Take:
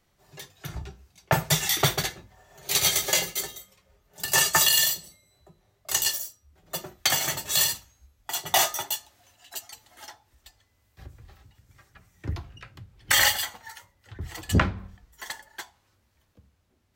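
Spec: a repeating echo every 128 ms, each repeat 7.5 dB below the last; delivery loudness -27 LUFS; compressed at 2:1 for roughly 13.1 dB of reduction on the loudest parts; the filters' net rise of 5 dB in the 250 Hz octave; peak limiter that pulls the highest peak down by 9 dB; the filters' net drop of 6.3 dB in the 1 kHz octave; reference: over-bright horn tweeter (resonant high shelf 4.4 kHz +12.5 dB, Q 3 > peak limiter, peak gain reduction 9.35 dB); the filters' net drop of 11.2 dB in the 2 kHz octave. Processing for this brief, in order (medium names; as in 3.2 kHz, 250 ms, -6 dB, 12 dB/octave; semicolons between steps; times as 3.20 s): peaking EQ 250 Hz +8 dB; peaking EQ 1 kHz -6.5 dB; peaking EQ 2 kHz -8 dB; compression 2:1, threshold -38 dBFS; peak limiter -24.5 dBFS; resonant high shelf 4.4 kHz +12.5 dB, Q 3; feedback delay 128 ms, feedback 42%, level -7.5 dB; trim -0.5 dB; peak limiter -16.5 dBFS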